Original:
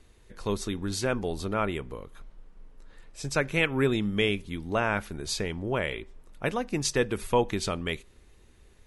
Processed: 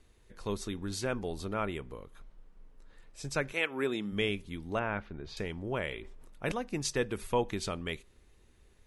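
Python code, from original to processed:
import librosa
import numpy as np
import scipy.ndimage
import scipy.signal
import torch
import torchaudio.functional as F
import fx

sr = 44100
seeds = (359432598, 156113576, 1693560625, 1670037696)

y = fx.highpass(x, sr, hz=fx.line((3.52, 440.0), (4.11, 180.0)), slope=12, at=(3.52, 4.11), fade=0.02)
y = fx.air_absorb(y, sr, metres=270.0, at=(4.79, 5.37))
y = fx.sustainer(y, sr, db_per_s=26.0, at=(6.0, 6.52))
y = F.gain(torch.from_numpy(y), -5.5).numpy()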